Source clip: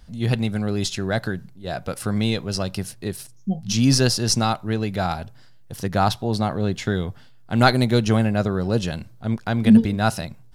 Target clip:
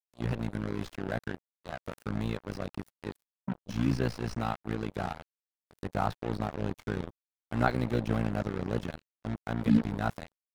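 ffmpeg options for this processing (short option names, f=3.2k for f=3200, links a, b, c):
-filter_complex "[0:a]acrusher=bits=3:mix=0:aa=0.5,tremolo=f=58:d=0.889,acrossover=split=2600[a][b];[b]acompressor=threshold=-44dB:ratio=4:attack=1:release=60[c];[a][c]amix=inputs=2:normalize=0,volume=-7dB"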